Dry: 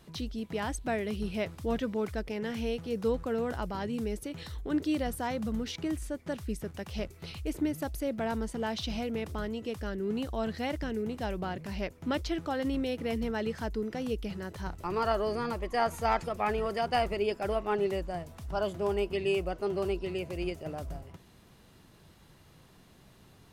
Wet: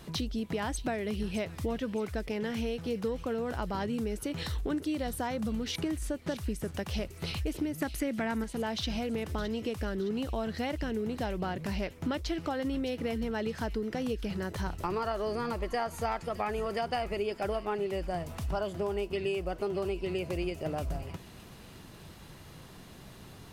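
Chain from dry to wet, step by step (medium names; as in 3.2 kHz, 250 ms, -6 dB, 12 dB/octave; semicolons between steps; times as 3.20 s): 7.81–8.44 s: graphic EQ 250/1000/2000/8000 Hz +8/+3/+12/+6 dB; compression 6:1, threshold -38 dBFS, peak gain reduction 14.5 dB; feedback echo behind a high-pass 615 ms, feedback 48%, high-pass 2.3 kHz, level -12.5 dB; trim +8 dB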